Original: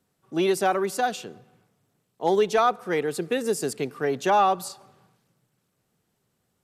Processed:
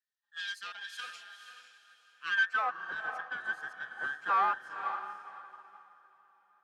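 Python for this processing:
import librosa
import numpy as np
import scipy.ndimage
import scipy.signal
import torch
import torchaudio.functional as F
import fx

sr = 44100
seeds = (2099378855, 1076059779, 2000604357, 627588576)

y = fx.band_invert(x, sr, width_hz=2000)
y = fx.peak_eq(y, sr, hz=840.0, db=-4.5, octaves=1.8, at=(2.5, 3.13))
y = fx.tube_stage(y, sr, drive_db=19.0, bias=0.65)
y = fx.echo_diffused(y, sr, ms=506, feedback_pct=43, wet_db=-5.0)
y = fx.filter_sweep_bandpass(y, sr, from_hz=3900.0, to_hz=920.0, start_s=2.11, end_s=2.71, q=1.4)
y = fx.upward_expand(y, sr, threshold_db=-49.0, expansion=1.5)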